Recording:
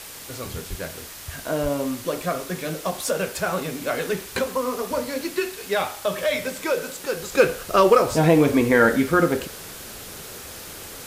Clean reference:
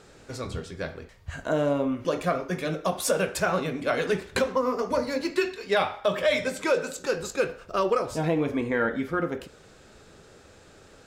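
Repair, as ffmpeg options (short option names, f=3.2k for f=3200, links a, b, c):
-filter_complex "[0:a]asplit=3[a][b][c];[a]afade=t=out:st=0.69:d=0.02[d];[b]highpass=f=140:w=0.5412,highpass=f=140:w=1.3066,afade=t=in:st=0.69:d=0.02,afade=t=out:st=0.81:d=0.02[e];[c]afade=t=in:st=0.81:d=0.02[f];[d][e][f]amix=inputs=3:normalize=0,asplit=3[g][h][i];[g]afade=t=out:st=1.62:d=0.02[j];[h]highpass=f=140:w=0.5412,highpass=f=140:w=1.3066,afade=t=in:st=1.62:d=0.02,afade=t=out:st=1.74:d=0.02[k];[i]afade=t=in:st=1.74:d=0.02[l];[j][k][l]amix=inputs=3:normalize=0,afwtdn=0.013,asetnsamples=n=441:p=0,asendcmd='7.32 volume volume -9dB',volume=0dB"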